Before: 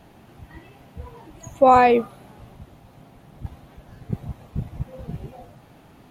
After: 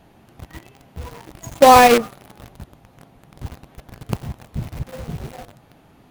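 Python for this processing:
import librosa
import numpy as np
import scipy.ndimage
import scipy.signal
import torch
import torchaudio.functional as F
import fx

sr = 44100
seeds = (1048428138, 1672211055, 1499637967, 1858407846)

p1 = fx.hum_notches(x, sr, base_hz=50, count=6, at=(2.02, 2.54))
p2 = fx.quant_companded(p1, sr, bits=2)
p3 = p1 + F.gain(torch.from_numpy(p2), -7.0).numpy()
y = F.gain(torch.from_numpy(p3), -1.5).numpy()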